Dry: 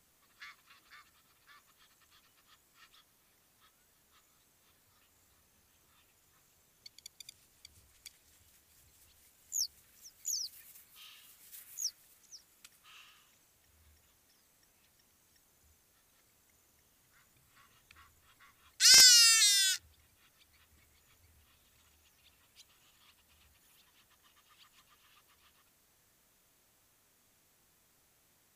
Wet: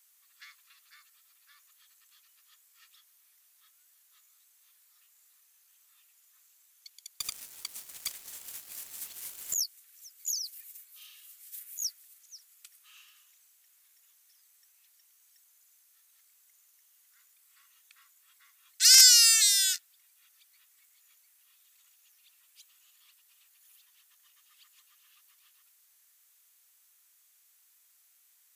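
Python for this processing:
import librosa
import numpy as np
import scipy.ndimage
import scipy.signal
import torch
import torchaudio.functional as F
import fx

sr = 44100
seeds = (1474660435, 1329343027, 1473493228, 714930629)

y = scipy.signal.sosfilt(scipy.signal.butter(2, 1400.0, 'highpass', fs=sr, output='sos'), x)
y = fx.high_shelf(y, sr, hz=6800.0, db=10.5)
y = fx.leveller(y, sr, passes=5, at=(7.2, 9.54))
y = F.gain(torch.from_numpy(y), -1.0).numpy()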